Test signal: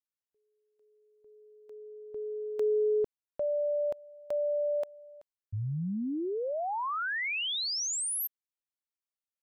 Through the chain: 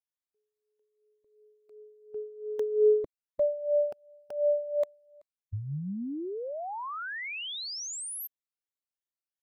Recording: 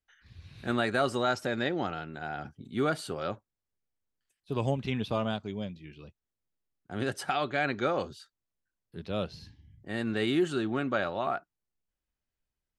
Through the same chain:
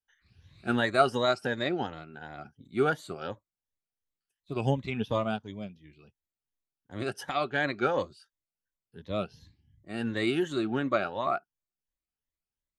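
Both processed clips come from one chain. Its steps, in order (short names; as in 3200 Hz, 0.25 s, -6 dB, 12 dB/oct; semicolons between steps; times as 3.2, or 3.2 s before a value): moving spectral ripple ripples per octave 1.1, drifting +2.8 Hz, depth 11 dB; upward expander 1.5:1, over -43 dBFS; gain +3 dB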